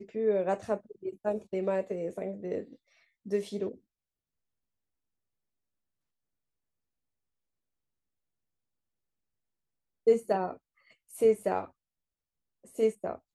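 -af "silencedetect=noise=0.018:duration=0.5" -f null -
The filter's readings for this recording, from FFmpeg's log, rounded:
silence_start: 2.61
silence_end: 3.28 | silence_duration: 0.67
silence_start: 3.72
silence_end: 10.07 | silence_duration: 6.35
silence_start: 10.51
silence_end: 11.15 | silence_duration: 0.64
silence_start: 11.65
silence_end: 12.79 | silence_duration: 1.14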